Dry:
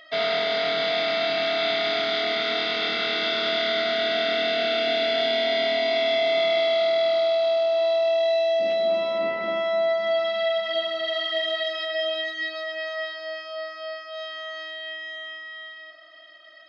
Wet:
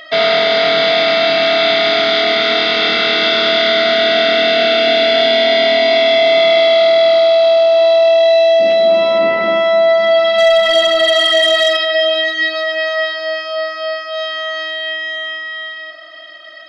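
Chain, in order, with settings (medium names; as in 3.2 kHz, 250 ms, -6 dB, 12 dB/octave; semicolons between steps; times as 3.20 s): in parallel at -2 dB: peak limiter -21.5 dBFS, peak gain reduction 8 dB; 10.38–11.77 s: on the sum: waveshaping leveller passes 1; trim +8.5 dB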